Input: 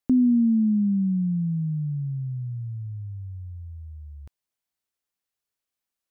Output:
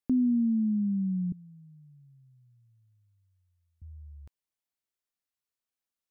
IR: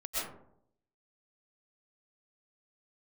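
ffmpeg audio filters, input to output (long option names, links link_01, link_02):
-filter_complex "[0:a]asettb=1/sr,asplit=3[link_01][link_02][link_03];[link_01]atrim=end=1.324[link_04];[link_02]atrim=start=1.32:end=3.82,asetpts=PTS-STARTPTS,afade=type=in:duration=0.004:curve=qsin,afade=type=out:start_time=2.496:duration=0.004:curve=qsin,highpass=490[link_05];[link_03]atrim=start=3.816[link_06];[link_04][link_05]acrossfade=duration=0.004:curve1=hsin:curve2=qsin[link_07];[link_07][link_06]acrossfade=duration=0.004:curve1=qsin:curve2=hsin,volume=-6dB"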